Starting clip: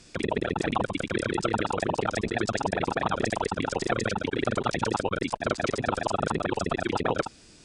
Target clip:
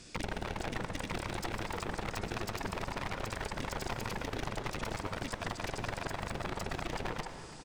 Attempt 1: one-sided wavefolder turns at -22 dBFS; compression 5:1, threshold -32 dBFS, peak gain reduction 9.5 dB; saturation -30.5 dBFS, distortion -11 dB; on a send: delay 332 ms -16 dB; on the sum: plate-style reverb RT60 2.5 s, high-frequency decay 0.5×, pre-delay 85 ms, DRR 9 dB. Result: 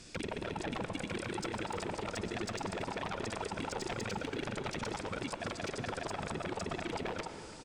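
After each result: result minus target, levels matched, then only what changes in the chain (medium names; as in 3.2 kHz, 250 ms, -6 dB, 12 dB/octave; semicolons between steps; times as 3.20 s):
one-sided wavefolder: distortion -11 dB; saturation: distortion +11 dB
change: one-sided wavefolder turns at -31.5 dBFS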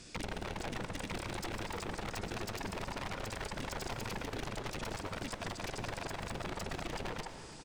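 saturation: distortion +12 dB
change: saturation -21 dBFS, distortion -22 dB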